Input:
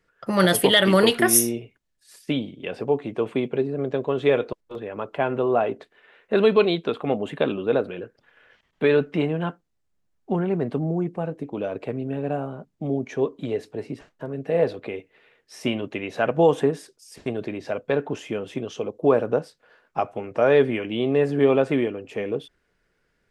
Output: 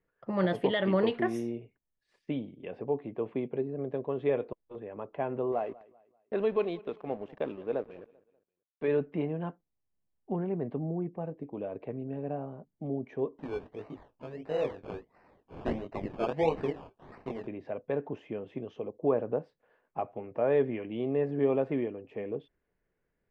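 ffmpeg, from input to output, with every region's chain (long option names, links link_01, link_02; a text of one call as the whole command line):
ffmpeg -i in.wav -filter_complex "[0:a]asettb=1/sr,asplit=3[link_01][link_02][link_03];[link_01]atrim=end=5.524[link_04];[link_02]atrim=start=5.52:end=8.88,asetpts=PTS-STARTPTS,afade=type=in:duration=0.004:curve=qsin,afade=type=out:start_time=3.356:duration=0.004:curve=qsin,equalizer=frequency=78:width=0.33:gain=-6.5,aeval=exprs='sgn(val(0))*max(abs(val(0))-0.00944,0)':channel_layout=same,aecho=1:1:195|390|585:0.0794|0.0286|0.0103,atrim=end_sample=148176[link_05];[link_03]atrim=start=8.876[link_06];[link_04][link_05]acrossfade=duration=0.004:curve1=hsin:curve2=qsin[link_07];[link_07][link_06]acrossfade=duration=0.004:curve1=qsin:curve2=hsin,asettb=1/sr,asplit=3[link_08][link_09][link_10];[link_08]atrim=end=13.384[link_11];[link_09]atrim=start=13.38:end=17.47,asetpts=PTS-STARTPTS,afade=type=in:duration=0.004:curve=qsin,afade=type=out:start_time=4.086:duration=0.004:curve=qsin,equalizer=frequency=3700:width=0.37:gain=13,flanger=delay=18.5:depth=3.8:speed=1.9,acrusher=samples=18:mix=1:aa=0.000001:lfo=1:lforange=10.8:lforate=1.5[link_12];[link_10]atrim=start=17.466[link_13];[link_11][link_12]acrossfade=duration=0.004:curve1=hsin:curve2=qsin[link_14];[link_14][link_13]acrossfade=duration=0.004:curve1=qsin:curve2=hsin,lowpass=1800,equalizer=frequency=1400:width=3.6:gain=-8,volume=-8.5dB" out.wav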